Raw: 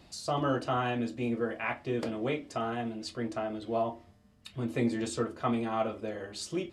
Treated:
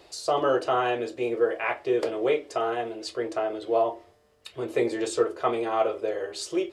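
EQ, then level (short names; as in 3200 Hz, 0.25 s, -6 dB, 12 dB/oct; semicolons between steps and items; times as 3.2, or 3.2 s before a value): resonant low shelf 300 Hz -10 dB, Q 3; +4.5 dB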